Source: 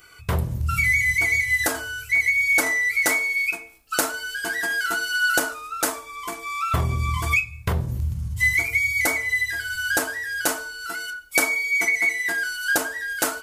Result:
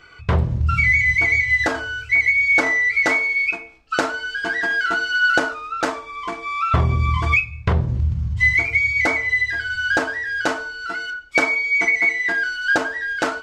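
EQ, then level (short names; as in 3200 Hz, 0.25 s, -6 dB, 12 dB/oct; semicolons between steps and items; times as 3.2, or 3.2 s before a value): air absorption 180 m; bell 14000 Hz -11 dB 0.22 oct; +5.5 dB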